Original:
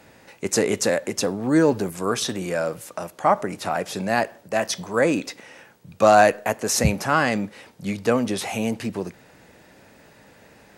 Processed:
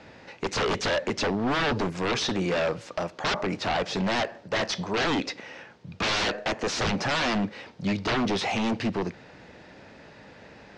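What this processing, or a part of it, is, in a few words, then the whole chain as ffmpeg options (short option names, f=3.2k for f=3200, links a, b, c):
synthesiser wavefolder: -af "aeval=exprs='0.075*(abs(mod(val(0)/0.075+3,4)-2)-1)':c=same,lowpass=f=5.4k:w=0.5412,lowpass=f=5.4k:w=1.3066,volume=2.5dB"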